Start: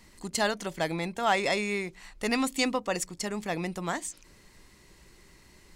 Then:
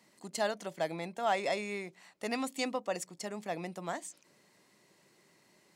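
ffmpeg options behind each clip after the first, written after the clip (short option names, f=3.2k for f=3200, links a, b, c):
-af "highpass=f=140:w=0.5412,highpass=f=140:w=1.3066,equalizer=f=640:w=2.1:g=7,volume=-8.5dB"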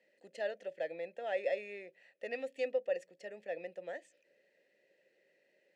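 -filter_complex "[0:a]asplit=3[a][b][c];[a]bandpass=f=530:t=q:w=8,volume=0dB[d];[b]bandpass=f=1.84k:t=q:w=8,volume=-6dB[e];[c]bandpass=f=2.48k:t=q:w=8,volume=-9dB[f];[d][e][f]amix=inputs=3:normalize=0,volume=5.5dB"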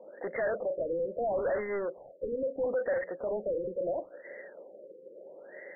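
-filter_complex "[0:a]asplit=2[a][b];[b]highpass=f=720:p=1,volume=37dB,asoftclip=type=tanh:threshold=-22.5dB[c];[a][c]amix=inputs=2:normalize=0,lowpass=f=1.3k:p=1,volume=-6dB,lowpass=f=3.2k:t=q:w=4.9,afftfilt=real='re*lt(b*sr/1024,530*pow(2200/530,0.5+0.5*sin(2*PI*0.75*pts/sr)))':imag='im*lt(b*sr/1024,530*pow(2200/530,0.5+0.5*sin(2*PI*0.75*pts/sr)))':win_size=1024:overlap=0.75"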